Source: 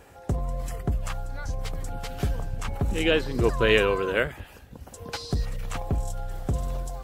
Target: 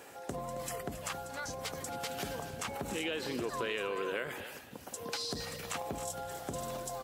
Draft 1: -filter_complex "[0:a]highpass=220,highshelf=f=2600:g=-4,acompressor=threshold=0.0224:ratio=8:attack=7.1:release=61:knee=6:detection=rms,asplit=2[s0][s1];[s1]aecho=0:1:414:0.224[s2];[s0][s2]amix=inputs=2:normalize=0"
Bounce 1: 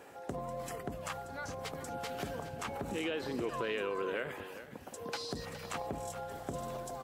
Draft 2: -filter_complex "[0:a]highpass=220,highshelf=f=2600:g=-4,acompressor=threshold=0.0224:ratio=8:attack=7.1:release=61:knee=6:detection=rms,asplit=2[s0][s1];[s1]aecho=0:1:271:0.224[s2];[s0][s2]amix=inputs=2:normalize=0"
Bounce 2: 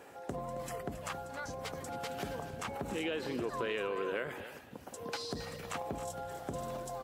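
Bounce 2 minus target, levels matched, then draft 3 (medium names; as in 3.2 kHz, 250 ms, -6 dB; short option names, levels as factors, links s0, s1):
4 kHz band -3.5 dB
-filter_complex "[0:a]highpass=220,highshelf=f=2600:g=5,acompressor=threshold=0.0224:ratio=8:attack=7.1:release=61:knee=6:detection=rms,asplit=2[s0][s1];[s1]aecho=0:1:271:0.224[s2];[s0][s2]amix=inputs=2:normalize=0"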